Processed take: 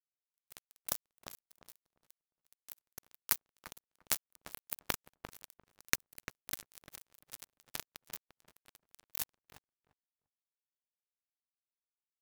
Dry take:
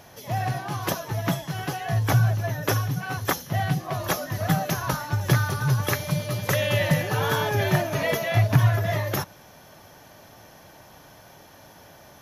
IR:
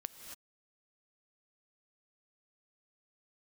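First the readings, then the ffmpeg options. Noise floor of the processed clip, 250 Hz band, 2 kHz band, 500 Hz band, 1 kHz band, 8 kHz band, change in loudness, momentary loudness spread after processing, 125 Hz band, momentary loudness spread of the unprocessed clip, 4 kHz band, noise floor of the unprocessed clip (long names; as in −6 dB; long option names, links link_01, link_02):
below −85 dBFS, −29.0 dB, −18.5 dB, −29.5 dB, −24.0 dB, −7.5 dB, −15.5 dB, 22 LU, −39.5 dB, 8 LU, −14.0 dB, −50 dBFS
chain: -filter_complex "[0:a]equalizer=frequency=430:width_type=o:width=1.3:gain=-12,areverse,acompressor=threshold=-34dB:ratio=12,areverse,acrusher=bits=3:mix=0:aa=0.5,crystalizer=i=1.5:c=0,asplit=2[link_01][link_02];[link_02]adelay=347,lowpass=frequency=1200:poles=1,volume=-7.5dB,asplit=2[link_03][link_04];[link_04]adelay=347,lowpass=frequency=1200:poles=1,volume=0.17,asplit=2[link_05][link_06];[link_06]adelay=347,lowpass=frequency=1200:poles=1,volume=0.17[link_07];[link_01][link_03][link_05][link_07]amix=inputs=4:normalize=0,volume=12.5dB"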